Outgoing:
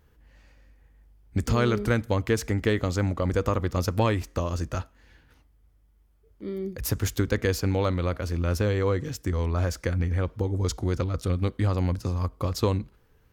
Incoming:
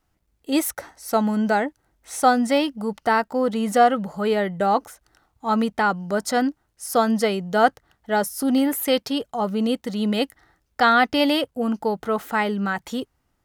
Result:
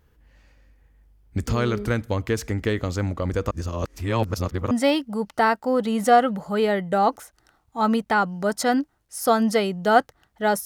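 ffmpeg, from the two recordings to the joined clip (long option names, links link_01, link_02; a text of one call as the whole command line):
ffmpeg -i cue0.wav -i cue1.wav -filter_complex "[0:a]apad=whole_dur=10.65,atrim=end=10.65,asplit=2[link_01][link_02];[link_01]atrim=end=3.512[link_03];[link_02]atrim=start=3.508:end=4.712,asetpts=PTS-STARTPTS,areverse[link_04];[1:a]atrim=start=2.388:end=8.33[link_05];[link_03][link_04]acrossfade=duration=0.004:curve1=hsin:curve2=hsin[link_06];[link_06][link_05]acrossfade=duration=0.004:curve1=hsin:curve2=hsin" out.wav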